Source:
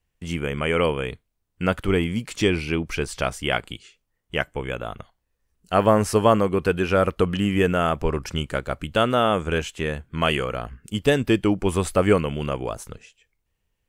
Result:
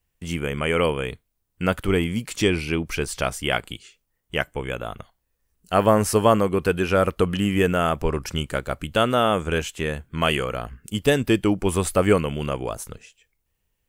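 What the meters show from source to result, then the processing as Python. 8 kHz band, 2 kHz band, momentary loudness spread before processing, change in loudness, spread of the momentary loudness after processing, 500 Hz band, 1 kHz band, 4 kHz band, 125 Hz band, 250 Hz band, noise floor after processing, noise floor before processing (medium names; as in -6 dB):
+4.0 dB, +0.5 dB, 12 LU, 0.0 dB, 12 LU, 0.0 dB, 0.0 dB, +1.0 dB, 0.0 dB, 0.0 dB, -75 dBFS, -76 dBFS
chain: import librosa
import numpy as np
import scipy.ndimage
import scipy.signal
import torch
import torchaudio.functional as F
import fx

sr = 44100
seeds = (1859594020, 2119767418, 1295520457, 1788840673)

y = fx.high_shelf(x, sr, hz=9700.0, db=10.5)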